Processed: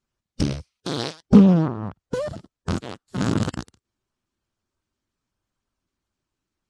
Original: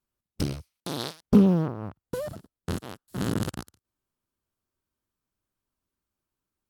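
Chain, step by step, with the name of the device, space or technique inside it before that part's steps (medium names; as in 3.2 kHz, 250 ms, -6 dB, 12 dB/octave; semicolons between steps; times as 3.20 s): clip after many re-uploads (low-pass 7.9 kHz 24 dB/octave; coarse spectral quantiser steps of 15 dB); trim +6 dB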